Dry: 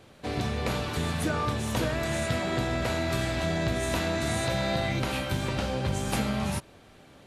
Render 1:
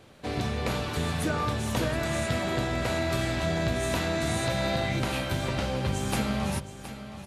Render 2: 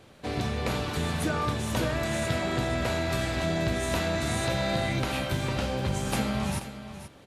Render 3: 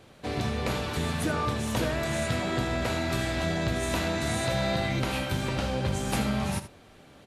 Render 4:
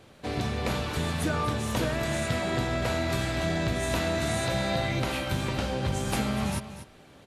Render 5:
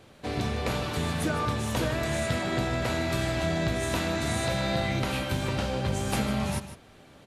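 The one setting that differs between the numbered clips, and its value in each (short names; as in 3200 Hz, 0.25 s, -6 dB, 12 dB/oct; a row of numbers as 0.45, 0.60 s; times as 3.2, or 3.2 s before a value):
echo, time: 719, 480, 77, 242, 153 ms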